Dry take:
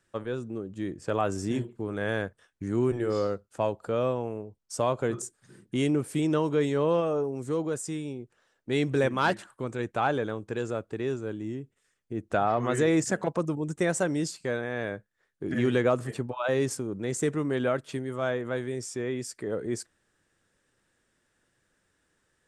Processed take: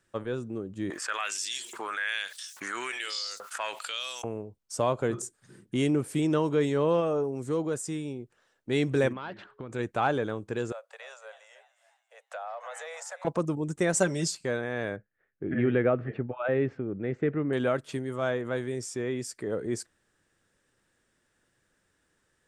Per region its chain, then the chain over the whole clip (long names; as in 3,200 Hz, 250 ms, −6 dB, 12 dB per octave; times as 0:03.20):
0:00.90–0:04.24: auto-filter high-pass saw up 1.2 Hz 960–6,500 Hz + envelope flattener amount 70%
0:09.12–0:09.71: low-pass filter 4,000 Hz 24 dB per octave + downward compressor 8 to 1, threshold −34 dBFS + steady tone 420 Hz −64 dBFS
0:10.72–0:13.25: Butterworth high-pass 510 Hz 96 dB per octave + echo with shifted repeats 291 ms, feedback 47%, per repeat +66 Hz, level −18 dB + downward compressor 2.5 to 1, threshold −41 dBFS
0:13.93–0:14.35: parametric band 6,000 Hz +5 dB 1.4 octaves + comb filter 5.1 ms, depth 59%
0:14.96–0:17.53: low-pass filter 2,400 Hz 24 dB per octave + parametric band 1,000 Hz −9 dB 0.4 octaves
whole clip: no processing